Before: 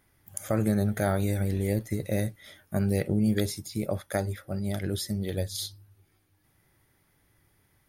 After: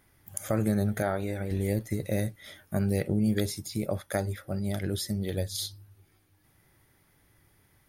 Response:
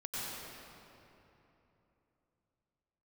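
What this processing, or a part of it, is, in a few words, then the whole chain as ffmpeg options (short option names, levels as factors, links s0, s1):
parallel compression: -filter_complex "[0:a]asettb=1/sr,asplit=3[s0][s1][s2];[s0]atrim=end=1.024[s3];[s1]atrim=start=1.02:end=1.51,asetpts=PTS-STARTPTS,afade=t=in:d=0.004:c=qsin,afade=t=out:st=0.486:d=0.004:c=qsin,bass=f=250:g=-8,treble=f=4000:g=-11[s4];[s2]atrim=start=1.506[s5];[s3][s4]acrossfade=d=0.004:c1=hsin:c2=qsin[s6];[s6][s5]acrossfade=d=0.004:c1=qsin:c2=hsin,asplit=2[s7][s8];[s8]acompressor=threshold=0.0158:ratio=6,volume=0.794[s9];[s7][s9]amix=inputs=2:normalize=0,volume=0.75"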